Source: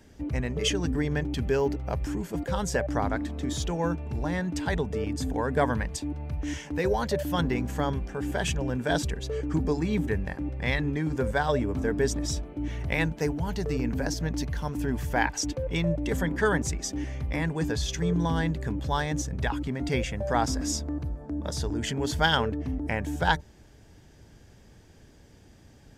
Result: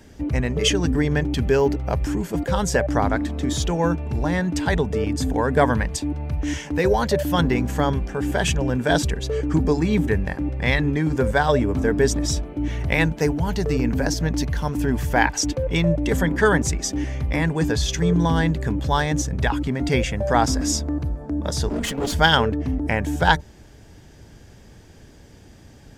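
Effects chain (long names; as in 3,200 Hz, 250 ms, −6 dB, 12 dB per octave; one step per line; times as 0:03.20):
0:21.67–0:22.14: lower of the sound and its delayed copy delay 4.3 ms
level +7 dB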